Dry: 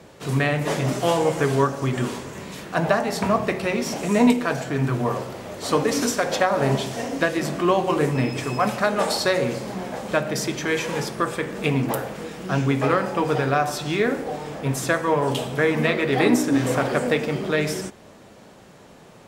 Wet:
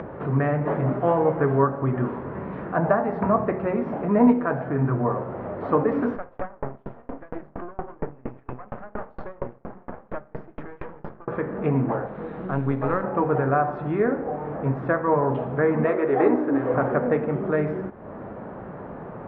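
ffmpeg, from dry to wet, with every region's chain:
ffmpeg -i in.wav -filter_complex "[0:a]asettb=1/sr,asplit=3[link_01][link_02][link_03];[link_01]atrim=end=6.164[link_04];[link_02]atrim=start=6.16:end=11.28,asetpts=PTS-STARTPTS,afade=type=in:duration=0.004:curve=qsin,afade=type=out:start_time=5.116:duration=0.004:curve=qsin,aeval=exprs='max(val(0),0)':channel_layout=same,aeval=exprs='val(0)*pow(10,-37*if(lt(mod(4.3*n/s,1),2*abs(4.3)/1000),1-mod(4.3*n/s,1)/(2*abs(4.3)/1000),(mod(4.3*n/s,1)-2*abs(4.3)/1000)/(1-2*abs(4.3)/1000))/20)':channel_layout=same[link_05];[link_03]atrim=start=11.276[link_06];[link_04][link_05]acrossfade=duration=0.004:curve1=hsin:curve2=qsin[link_07];[link_07][link_06]acrossfade=duration=0.004:curve1=qsin:curve2=hsin,asettb=1/sr,asplit=3[link_08][link_09][link_10];[link_08]atrim=end=12.064[link_11];[link_09]atrim=start=12.06:end=13.04,asetpts=PTS-STARTPTS,afade=type=in:duration=0.004:curve=qsin,afade=type=out:start_time=0.976:duration=0.004:curve=qsin,equalizer=frequency=3900:width_type=o:width=0.55:gain=13,aeval=exprs='(tanh(4.47*val(0)+0.75)-tanh(0.75))/4.47':channel_layout=same[link_12];[link_10]atrim=start=13.036[link_13];[link_11][link_12]acrossfade=duration=0.004:curve1=hsin:curve2=qsin[link_14];[link_14][link_13]acrossfade=duration=0.004:curve1=qsin:curve2=hsin,asettb=1/sr,asplit=3[link_15][link_16][link_17];[link_15]atrim=end=15.844[link_18];[link_16]atrim=start=15.84:end=16.74,asetpts=PTS-STARTPTS,afade=type=in:duration=0.004:curve=qsin,afade=type=out:start_time=0.896:duration=0.004:curve=qsin,lowpass=11000,lowshelf=frequency=270:width_type=q:width=1.5:gain=-7.5[link_19];[link_17]atrim=start=16.736[link_20];[link_18][link_19]acrossfade=duration=0.004:curve1=hsin:curve2=qsin[link_21];[link_21][link_20]acrossfade=duration=0.004:curve1=qsin:curve2=hsin,lowpass=frequency=1500:width=0.5412,lowpass=frequency=1500:width=1.3066,acompressor=mode=upward:threshold=-25dB:ratio=2.5" out.wav

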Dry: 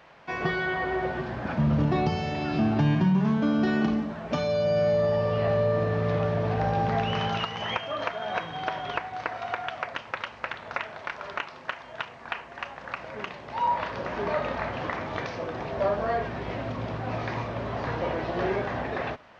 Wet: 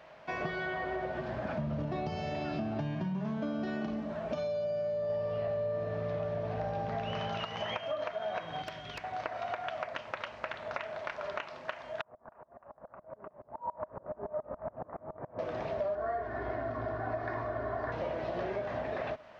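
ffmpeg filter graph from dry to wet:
ffmpeg -i in.wav -filter_complex "[0:a]asettb=1/sr,asplit=3[link_01][link_02][link_03];[link_01]atrim=end=4.244[link_04];[link_02]atrim=start=4.24:end=5.1,asetpts=PTS-STARTPTS,afade=type=in:duration=0.004:curve=qsin,afade=type=out:start_time=0.856:duration=0.004:curve=qsin,acompressor=threshold=-25dB:ratio=6:attack=3.2:release=140:knee=1:detection=peak,bandreject=frequency=2000:width=15[link_05];[link_03]atrim=start=5.096[link_06];[link_04][link_05]acrossfade=duration=0.004:curve1=hsin:curve2=qsin[link_07];[link_07][link_06]acrossfade=duration=0.004:curve1=qsin:curve2=hsin,asettb=1/sr,asplit=3[link_08][link_09][link_10];[link_08]atrim=end=8.624[link_11];[link_09]atrim=start=8.62:end=9.04,asetpts=PTS-STARTPTS,afade=type=in:duration=0.004:curve=qsin,afade=type=out:start_time=0.416:duration=0.004:curve=qsin,equalizer=frequency=720:width=0.56:gain=-14,aeval=exprs='0.0355*(abs(mod(val(0)/0.0355+3,4)-2)-1)':channel_layout=same[link_12];[link_10]atrim=start=9.036[link_13];[link_11][link_12]acrossfade=duration=0.004:curve1=hsin:curve2=qsin[link_14];[link_14][link_13]acrossfade=duration=0.004:curve1=qsin:curve2=hsin,asettb=1/sr,asplit=3[link_15][link_16][link_17];[link_15]atrim=end=12.014[link_18];[link_16]atrim=start=12.01:end=15.39,asetpts=PTS-STARTPTS,afade=type=in:duration=0.004:curve=qsin,afade=type=out:start_time=3.376:duration=0.004:curve=qsin,lowpass=frequency=1200:width=0.5412,lowpass=frequency=1200:width=1.3066,aeval=exprs='val(0)*pow(10,-33*if(lt(mod(-7.1*n/s,1),2*abs(-7.1)/1000),1-mod(-7.1*n/s,1)/(2*abs(-7.1)/1000),(mod(-7.1*n/s,1)-2*abs(-7.1)/1000)/(1-2*abs(-7.1)/1000))/20)':channel_layout=same[link_19];[link_17]atrim=start=15.386[link_20];[link_18][link_19]acrossfade=duration=0.004:curve1=hsin:curve2=qsin[link_21];[link_21][link_20]acrossfade=duration=0.004:curve1=qsin:curve2=hsin,asettb=1/sr,asplit=3[link_22][link_23][link_24];[link_22]atrim=end=15.954[link_25];[link_23]atrim=start=15.95:end=17.92,asetpts=PTS-STARTPTS,afade=type=in:duration=0.004:curve=qsin,afade=type=out:start_time=1.966:duration=0.004:curve=qsin,lowpass=frequency=5500:width=0.5412,lowpass=frequency=5500:width=1.3066,highshelf=frequency=2100:width_type=q:width=3:gain=-7,aecho=1:1:2.8:0.68,atrim=end_sample=86877[link_26];[link_24]atrim=start=17.916[link_27];[link_25][link_26]acrossfade=duration=0.004:curve1=hsin:curve2=qsin[link_28];[link_28][link_27]acrossfade=duration=0.004:curve1=qsin:curve2=hsin,equalizer=frequency=620:width_type=o:width=0.21:gain=11.5,acompressor=threshold=-29dB:ratio=5,volume=-3.5dB" out.wav

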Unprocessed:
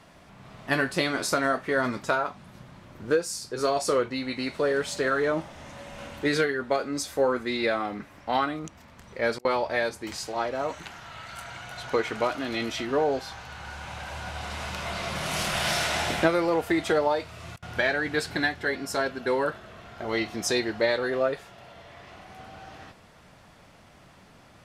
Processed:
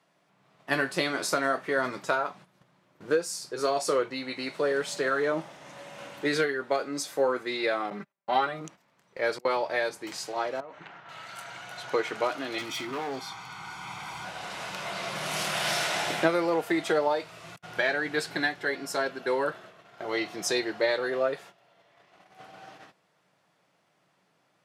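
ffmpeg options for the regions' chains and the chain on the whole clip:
ffmpeg -i in.wav -filter_complex "[0:a]asettb=1/sr,asplit=3[link_01][link_02][link_03];[link_01]atrim=end=7.904[link_04];[link_02]atrim=start=7.9:end=8.61,asetpts=PTS-STARTPTS,afade=type=in:duration=0.004:curve=qsin,afade=type=out:start_time=0.706:duration=0.004:curve=qsin,highshelf=frequency=3800:gain=-4.5,agate=range=-29dB:threshold=-40dB:ratio=16:release=100:detection=peak,aecho=1:1:5.1:0.85,atrim=end_sample=31311[link_05];[link_03]atrim=start=8.606[link_06];[link_04][link_05]acrossfade=duration=0.004:curve1=hsin:curve2=qsin[link_07];[link_07][link_06]acrossfade=duration=0.004:curve1=qsin:curve2=hsin,asettb=1/sr,asplit=3[link_08][link_09][link_10];[link_08]atrim=end=10.604[link_11];[link_09]atrim=start=10.6:end=11.09,asetpts=PTS-STARTPTS,afade=type=in:duration=0.004:curve=qsin,afade=type=out:start_time=0.486:duration=0.004:curve=qsin,lowpass=2400,acompressor=threshold=-37dB:ratio=16:attack=3.2:release=140:knee=1:detection=peak[link_12];[link_10]atrim=start=11.086[link_13];[link_11][link_12]acrossfade=duration=0.004:curve1=hsin:curve2=qsin[link_14];[link_14][link_13]acrossfade=duration=0.004:curve1=qsin:curve2=hsin,asettb=1/sr,asplit=3[link_15][link_16][link_17];[link_15]atrim=end=12.584[link_18];[link_16]atrim=start=12.58:end=14.25,asetpts=PTS-STARTPTS,afade=type=in:duration=0.004:curve=qsin,afade=type=out:start_time=1.666:duration=0.004:curve=qsin,aecho=1:1:0.9:0.77,atrim=end_sample=73647,asoftclip=type=hard:threshold=-28.5dB[link_19];[link_17]atrim=start=14.246[link_20];[link_18][link_19]acrossfade=duration=0.004:curve1=hsin:curve2=qsin[link_21];[link_21][link_20]acrossfade=duration=0.004:curve1=qsin:curve2=hsin,highpass=frequency=150:width=0.5412,highpass=frequency=150:width=1.3066,agate=range=-13dB:threshold=-45dB:ratio=16:detection=peak,equalizer=frequency=230:width=7.4:gain=-15,volume=-1.5dB" out.wav

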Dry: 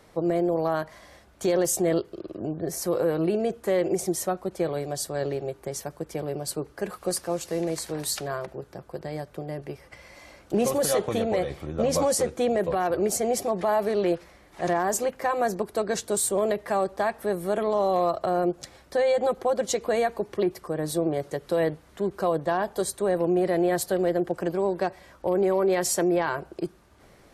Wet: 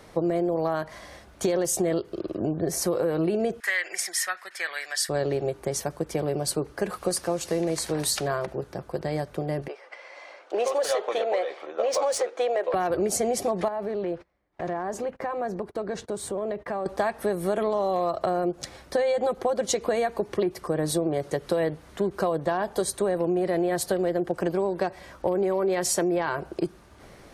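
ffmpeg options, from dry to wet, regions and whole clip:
ffmpeg -i in.wav -filter_complex "[0:a]asettb=1/sr,asplit=3[link_01][link_02][link_03];[link_01]atrim=end=3.604[link_04];[link_02]atrim=start=3.6:end=5.09,asetpts=PTS-STARTPTS,afade=type=in:duration=0.004:curve=qsin,afade=type=out:start_time=1.486:duration=0.004:curve=qsin,highpass=frequency=1800:width_type=q:width=5.2,equalizer=frequency=5300:width_type=o:width=0.23:gain=6.5,bandreject=frequency=5900:width=13[link_05];[link_03]atrim=start=5.086[link_06];[link_04][link_05]acrossfade=duration=0.004:curve1=hsin:curve2=qsin[link_07];[link_07][link_06]acrossfade=duration=0.004:curve1=qsin:curve2=hsin,asettb=1/sr,asplit=3[link_08][link_09][link_10];[link_08]atrim=end=9.684[link_11];[link_09]atrim=start=9.68:end=12.74,asetpts=PTS-STARTPTS,afade=type=in:duration=0.004:curve=qsin,afade=type=out:start_time=3.056:duration=0.004:curve=qsin,highpass=frequency=470:width=0.5412,highpass=frequency=470:width=1.3066,adynamicsmooth=sensitivity=3:basefreq=4100[link_12];[link_10]atrim=start=12.736[link_13];[link_11][link_12]acrossfade=duration=0.004:curve1=hsin:curve2=qsin[link_14];[link_14][link_13]acrossfade=duration=0.004:curve1=qsin:curve2=hsin,asettb=1/sr,asplit=3[link_15][link_16][link_17];[link_15]atrim=end=13.684[link_18];[link_16]atrim=start=13.68:end=16.86,asetpts=PTS-STARTPTS,afade=type=in:duration=0.004:curve=qsin,afade=type=out:start_time=3.176:duration=0.004:curve=qsin,agate=range=-26dB:threshold=-44dB:ratio=16:release=100:detection=peak,lowpass=frequency=1600:poles=1,acompressor=threshold=-36dB:ratio=2.5:attack=3.2:release=140:knee=1:detection=peak[link_19];[link_17]atrim=start=16.856[link_20];[link_18][link_19]acrossfade=duration=0.004:curve1=hsin:curve2=qsin[link_21];[link_21][link_20]acrossfade=duration=0.004:curve1=qsin:curve2=hsin,equalizer=frequency=12000:width=4.5:gain=-5.5,bandreject=frequency=7500:width=23,acompressor=threshold=-27dB:ratio=6,volume=5.5dB" out.wav

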